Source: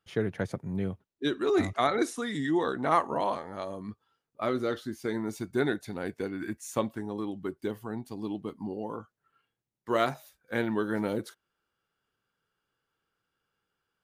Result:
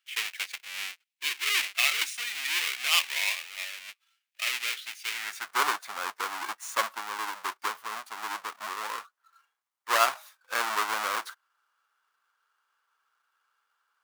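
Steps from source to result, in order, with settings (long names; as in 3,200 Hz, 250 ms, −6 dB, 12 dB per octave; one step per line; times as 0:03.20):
each half-wave held at its own peak
high-pass filter sweep 2,400 Hz → 1,100 Hz, 0:05.10–0:05.60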